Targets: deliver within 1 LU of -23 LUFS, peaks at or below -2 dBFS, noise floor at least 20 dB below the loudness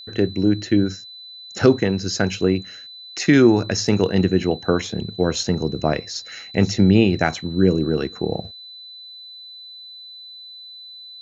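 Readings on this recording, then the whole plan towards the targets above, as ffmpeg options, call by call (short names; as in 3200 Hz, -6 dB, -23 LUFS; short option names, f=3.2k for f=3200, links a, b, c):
steady tone 4000 Hz; tone level -37 dBFS; loudness -20.0 LUFS; peak -2.5 dBFS; loudness target -23.0 LUFS
-> -af "bandreject=f=4k:w=30"
-af "volume=-3dB"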